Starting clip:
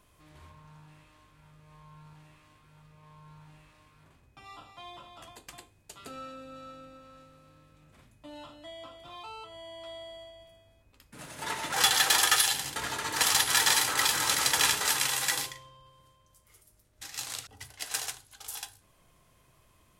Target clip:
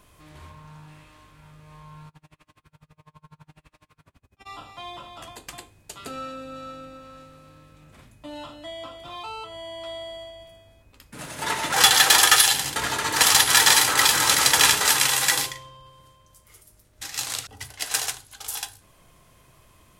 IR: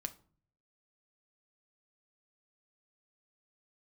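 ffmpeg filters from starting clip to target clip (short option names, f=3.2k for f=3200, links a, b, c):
-filter_complex "[0:a]asplit=3[a][b][c];[a]afade=t=out:st=2.07:d=0.02[d];[b]aeval=exprs='val(0)*pow(10,-34*(0.5-0.5*cos(2*PI*12*n/s))/20)':c=same,afade=t=in:st=2.07:d=0.02,afade=t=out:st=4.45:d=0.02[e];[c]afade=t=in:st=4.45:d=0.02[f];[d][e][f]amix=inputs=3:normalize=0,volume=8dB"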